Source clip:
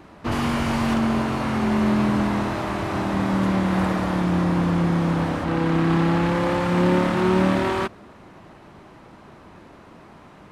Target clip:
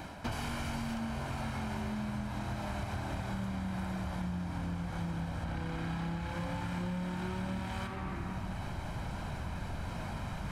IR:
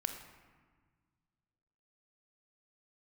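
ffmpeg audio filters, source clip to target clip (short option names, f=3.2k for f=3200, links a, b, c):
-filter_complex "[0:a]asubboost=boost=3.5:cutoff=140[a];[1:a]atrim=start_sample=2205[b];[a][b]afir=irnorm=-1:irlink=0,areverse,acompressor=mode=upward:threshold=-24dB:ratio=2.5,areverse,highshelf=f=4k:g=8.5,acompressor=threshold=-30dB:ratio=12,volume=-3.5dB"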